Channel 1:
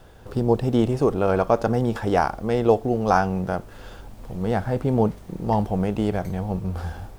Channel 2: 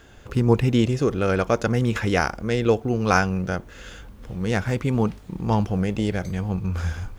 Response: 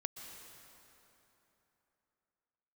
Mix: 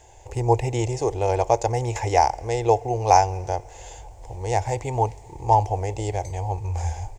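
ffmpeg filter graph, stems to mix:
-filter_complex "[0:a]equalizer=f=860:w=1.5:g=4,volume=-10dB[a];[1:a]volume=-3dB,asplit=2[b][c];[c]volume=-14.5dB[d];[2:a]atrim=start_sample=2205[e];[d][e]afir=irnorm=-1:irlink=0[f];[a][b][f]amix=inputs=3:normalize=0,firequalizer=gain_entry='entry(110,0);entry(190,-26);entry(340,-4);entry(870,9);entry(1300,-20);entry(2000,0);entry(3400,-6);entry(7200,11);entry(11000,-7)':delay=0.05:min_phase=1"

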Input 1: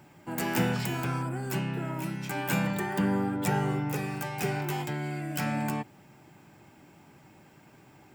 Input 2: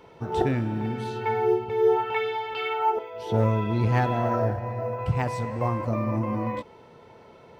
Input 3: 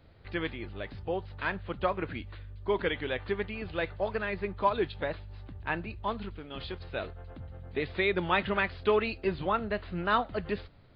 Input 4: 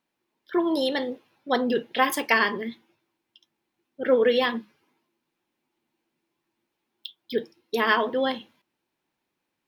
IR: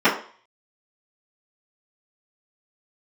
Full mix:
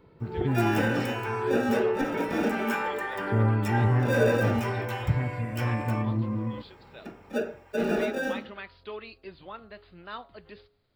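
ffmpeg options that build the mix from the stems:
-filter_complex "[0:a]highpass=610,adelay=200,volume=-11dB,asplit=2[a][b];[b]volume=-9dB[c];[1:a]lowpass=1.3k,equalizer=f=740:w=0.92:g=-15,volume=1dB[d];[2:a]bass=f=250:g=-4,treble=f=4k:g=12,bandreject=f=138.4:t=h:w=4,bandreject=f=276.8:t=h:w=4,bandreject=f=415.2:t=h:w=4,bandreject=f=553.6:t=h:w=4,bandreject=f=692:t=h:w=4,bandreject=f=830.4:t=h:w=4,bandreject=f=968.8:t=h:w=4,bandreject=f=1.1072k:t=h:w=4,bandreject=f=1.2456k:t=h:w=4,bandreject=f=1.384k:t=h:w=4,volume=-13dB[e];[3:a]acrusher=samples=42:mix=1:aa=0.000001,asoftclip=type=tanh:threshold=-16.5dB,volume=-17.5dB,asplit=2[f][g];[g]volume=-6.5dB[h];[4:a]atrim=start_sample=2205[i];[c][h]amix=inputs=2:normalize=0[j];[j][i]afir=irnorm=-1:irlink=0[k];[a][d][e][f][k]amix=inputs=5:normalize=0"

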